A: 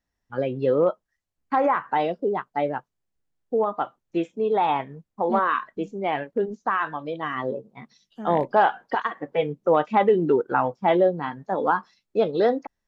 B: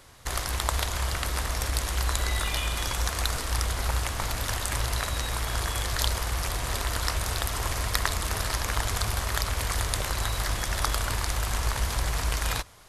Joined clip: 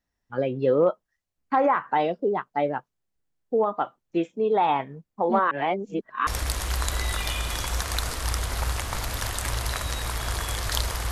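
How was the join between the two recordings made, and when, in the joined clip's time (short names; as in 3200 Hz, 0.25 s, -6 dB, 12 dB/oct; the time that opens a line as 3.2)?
A
5.51–6.27 reverse
6.27 switch to B from 1.54 s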